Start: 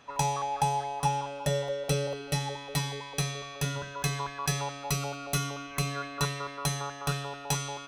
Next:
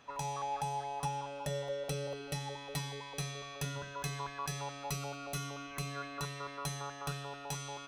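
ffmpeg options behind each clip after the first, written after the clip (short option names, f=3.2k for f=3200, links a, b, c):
-af "alimiter=limit=-22dB:level=0:latency=1:release=347,volume=-4dB"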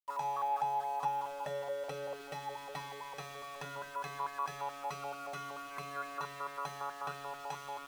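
-af "bandpass=f=990:t=q:w=1.1:csg=0,aeval=exprs='val(0)*gte(abs(val(0)),0.002)':c=same,volume=4.5dB"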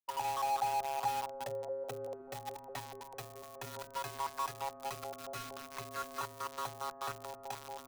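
-filter_complex "[0:a]acrossover=split=110|1000[a][b][c];[c]acrusher=bits=6:mix=0:aa=0.000001[d];[a][b][d]amix=inputs=3:normalize=0,afreqshift=-24"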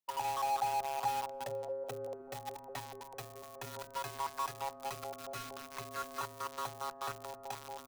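-filter_complex "[0:a]asplit=2[a][b];[b]adelay=460.6,volume=-25dB,highshelf=f=4k:g=-10.4[c];[a][c]amix=inputs=2:normalize=0"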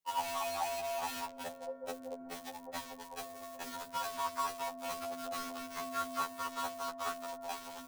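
-af "afftfilt=real='re*2*eq(mod(b,4),0)':imag='im*2*eq(mod(b,4),0)':win_size=2048:overlap=0.75,volume=5dB"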